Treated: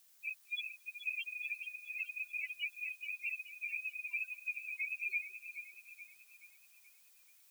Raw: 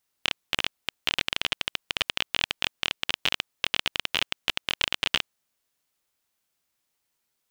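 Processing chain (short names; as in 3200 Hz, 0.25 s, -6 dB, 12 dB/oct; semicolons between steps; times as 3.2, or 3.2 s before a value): spectral contrast lowered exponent 0.18; sample leveller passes 5; loudest bins only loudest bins 1; added noise blue -70 dBFS; echo with dull and thin repeats by turns 0.214 s, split 1400 Hz, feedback 69%, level -7 dB; gain +4.5 dB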